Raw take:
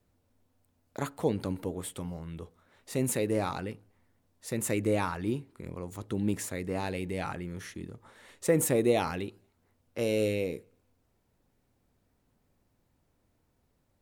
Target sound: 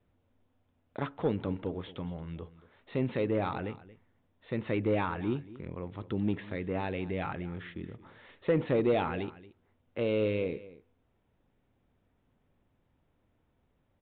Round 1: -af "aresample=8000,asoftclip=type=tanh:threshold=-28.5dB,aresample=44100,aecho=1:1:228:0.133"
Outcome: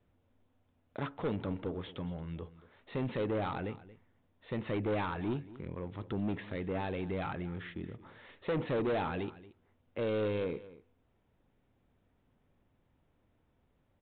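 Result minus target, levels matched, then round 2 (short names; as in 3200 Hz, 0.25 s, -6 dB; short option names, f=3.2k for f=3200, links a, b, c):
soft clip: distortion +11 dB
-af "aresample=8000,asoftclip=type=tanh:threshold=-18dB,aresample=44100,aecho=1:1:228:0.133"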